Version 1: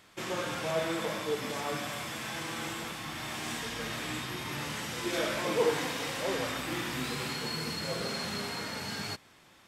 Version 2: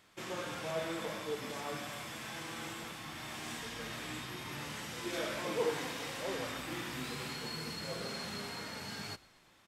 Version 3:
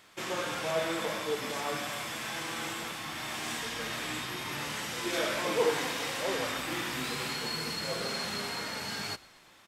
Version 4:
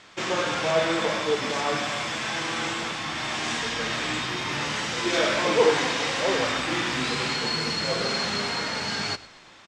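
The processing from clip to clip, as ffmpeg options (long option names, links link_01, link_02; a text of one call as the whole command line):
ffmpeg -i in.wav -filter_complex "[0:a]asplit=5[link_01][link_02][link_03][link_04][link_05];[link_02]adelay=118,afreqshift=-55,volume=-22.5dB[link_06];[link_03]adelay=236,afreqshift=-110,volume=-27.2dB[link_07];[link_04]adelay=354,afreqshift=-165,volume=-32dB[link_08];[link_05]adelay=472,afreqshift=-220,volume=-36.7dB[link_09];[link_01][link_06][link_07][link_08][link_09]amix=inputs=5:normalize=0,volume=-6dB" out.wav
ffmpeg -i in.wav -af "lowshelf=frequency=280:gain=-6.5,volume=7.5dB" out.wav
ffmpeg -i in.wav -af "lowpass=frequency=7100:width=0.5412,lowpass=frequency=7100:width=1.3066,aecho=1:1:102:0.0841,volume=8dB" out.wav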